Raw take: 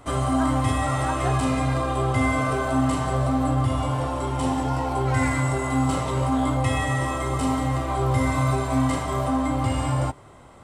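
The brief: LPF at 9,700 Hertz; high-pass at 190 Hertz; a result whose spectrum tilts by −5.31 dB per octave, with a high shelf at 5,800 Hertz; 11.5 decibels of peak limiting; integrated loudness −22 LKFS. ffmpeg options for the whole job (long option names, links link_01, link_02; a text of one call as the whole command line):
ffmpeg -i in.wav -af "highpass=190,lowpass=9700,highshelf=frequency=5800:gain=-7.5,volume=9.5dB,alimiter=limit=-14dB:level=0:latency=1" out.wav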